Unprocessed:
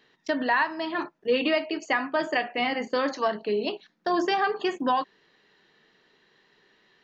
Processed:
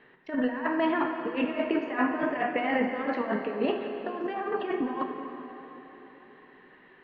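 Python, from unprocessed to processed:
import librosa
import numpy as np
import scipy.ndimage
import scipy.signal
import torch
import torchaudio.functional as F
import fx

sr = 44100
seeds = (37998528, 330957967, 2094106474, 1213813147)

y = scipy.signal.sosfilt(scipy.signal.butter(4, 2400.0, 'lowpass', fs=sr, output='sos'), x)
y = fx.over_compress(y, sr, threshold_db=-30.0, ratio=-0.5)
y = fx.rev_plate(y, sr, seeds[0], rt60_s=3.9, hf_ratio=0.75, predelay_ms=0, drr_db=4.0)
y = y * 10.0 ** (1.5 / 20.0)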